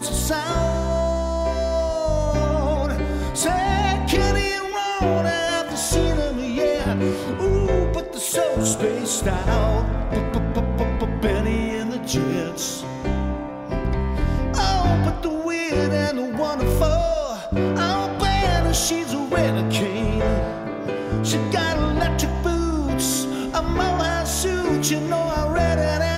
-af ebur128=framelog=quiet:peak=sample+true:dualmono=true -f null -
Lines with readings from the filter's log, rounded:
Integrated loudness:
  I:         -19.1 LUFS
  Threshold: -29.1 LUFS
Loudness range:
  LRA:         2.3 LU
  Threshold: -39.1 LUFS
  LRA low:   -20.5 LUFS
  LRA high:  -18.2 LUFS
Sample peak:
  Peak:       -7.3 dBFS
True peak:
  Peak:       -7.1 dBFS